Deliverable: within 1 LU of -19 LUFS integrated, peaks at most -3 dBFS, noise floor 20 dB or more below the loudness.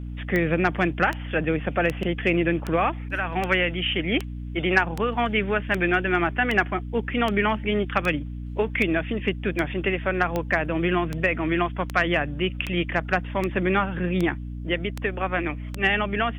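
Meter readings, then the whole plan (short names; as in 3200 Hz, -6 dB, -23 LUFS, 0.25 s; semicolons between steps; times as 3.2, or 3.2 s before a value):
clicks 21; hum 60 Hz; harmonics up to 300 Hz; hum level -31 dBFS; loudness -24.5 LUFS; peak -6.5 dBFS; loudness target -19.0 LUFS
-> de-click; de-hum 60 Hz, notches 5; gain +5.5 dB; limiter -3 dBFS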